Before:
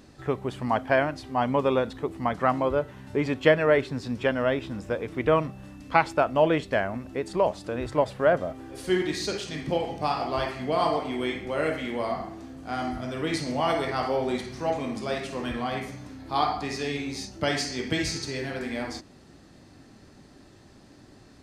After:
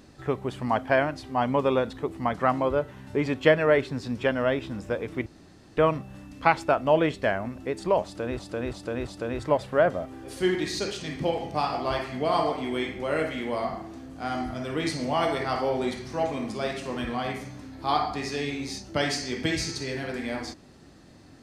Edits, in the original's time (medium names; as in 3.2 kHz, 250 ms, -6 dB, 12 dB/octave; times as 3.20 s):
5.26 s: insert room tone 0.51 s
7.54–7.88 s: loop, 4 plays